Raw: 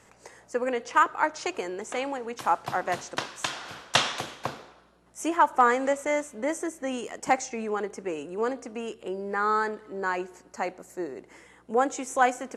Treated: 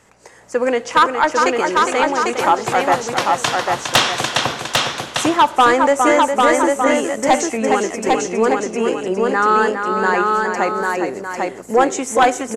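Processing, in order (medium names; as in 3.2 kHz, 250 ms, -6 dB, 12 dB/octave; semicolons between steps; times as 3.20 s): delay 410 ms -7 dB; sine folder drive 4 dB, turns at -8.5 dBFS; level rider; on a send: delay 798 ms -3 dB; on the sum: trim -4 dB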